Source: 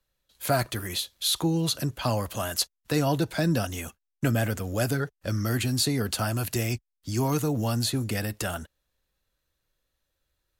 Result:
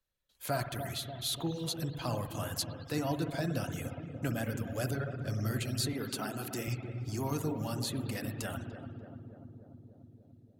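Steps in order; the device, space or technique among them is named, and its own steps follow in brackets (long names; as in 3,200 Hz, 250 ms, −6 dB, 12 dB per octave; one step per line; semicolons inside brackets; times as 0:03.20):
dub delay into a spring reverb (feedback echo with a low-pass in the loop 293 ms, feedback 76%, low-pass 1,000 Hz, level −8 dB; spring reverb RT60 1.4 s, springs 57 ms, chirp 55 ms, DRR 3.5 dB)
reverb reduction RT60 0.52 s
0:05.93–0:06.68: high-pass filter 180 Hz 12 dB per octave
level −9 dB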